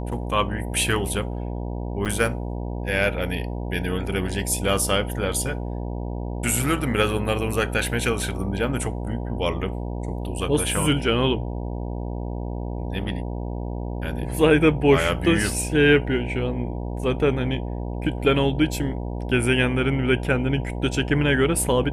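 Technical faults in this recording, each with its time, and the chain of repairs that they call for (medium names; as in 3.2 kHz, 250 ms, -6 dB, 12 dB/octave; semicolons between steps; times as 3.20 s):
buzz 60 Hz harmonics 16 -29 dBFS
2.05–2.06 s: dropout 7.1 ms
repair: de-hum 60 Hz, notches 16; interpolate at 2.05 s, 7.1 ms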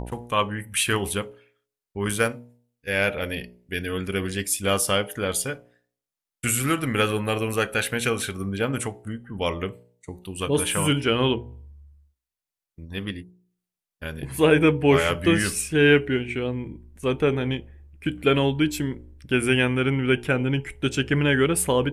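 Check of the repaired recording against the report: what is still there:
nothing left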